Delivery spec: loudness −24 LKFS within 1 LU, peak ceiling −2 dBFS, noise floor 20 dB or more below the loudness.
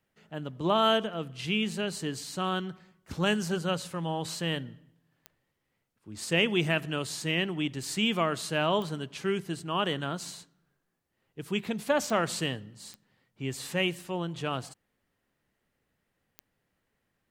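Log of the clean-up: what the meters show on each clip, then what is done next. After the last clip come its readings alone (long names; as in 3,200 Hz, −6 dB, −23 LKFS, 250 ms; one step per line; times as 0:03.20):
number of clicks 5; integrated loudness −30.0 LKFS; sample peak −10.0 dBFS; target loudness −24.0 LKFS
→ click removal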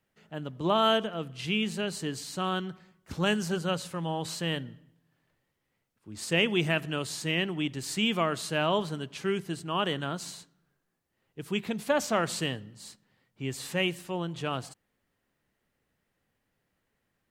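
number of clicks 0; integrated loudness −30.0 LKFS; sample peak −10.0 dBFS; target loudness −24.0 LKFS
→ level +6 dB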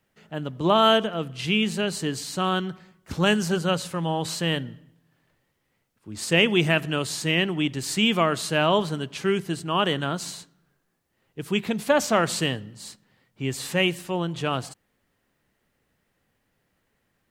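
integrated loudness −24.0 LKFS; sample peak −4.0 dBFS; background noise floor −73 dBFS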